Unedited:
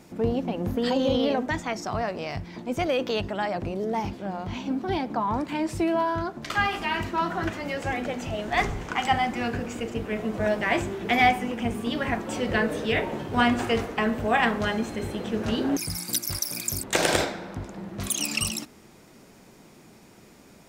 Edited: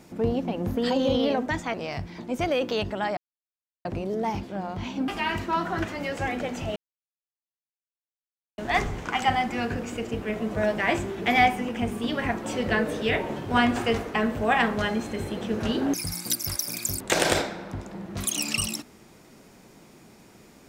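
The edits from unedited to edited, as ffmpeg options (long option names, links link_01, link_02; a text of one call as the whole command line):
ffmpeg -i in.wav -filter_complex "[0:a]asplit=5[link_01][link_02][link_03][link_04][link_05];[link_01]atrim=end=1.742[link_06];[link_02]atrim=start=2.118:end=3.55,asetpts=PTS-STARTPTS,afade=type=out:start_time=1.428:duration=0.004:curve=hsin,apad=pad_dur=0.68[link_07];[link_03]atrim=start=3.55:end=4.782,asetpts=PTS-STARTPTS,afade=type=in:duration=0.004:curve=hsin[link_08];[link_04]atrim=start=6.728:end=8.41,asetpts=PTS-STARTPTS,afade=type=out:start_time=1.678:duration=0.004:curve=hsin,apad=pad_dur=1.82[link_09];[link_05]atrim=start=8.41,asetpts=PTS-STARTPTS,afade=type=in:duration=0.004:curve=hsin[link_10];[link_07][link_08]concat=n=2:v=0:a=1[link_11];[link_06][link_11]acrossfade=duration=0.004:curve1=hsin:curve2=hsin[link_12];[link_09][link_10]concat=n=2:v=0:a=1[link_13];[link_12][link_13]acrossfade=duration=0.004:curve1=hsin:curve2=hsin" out.wav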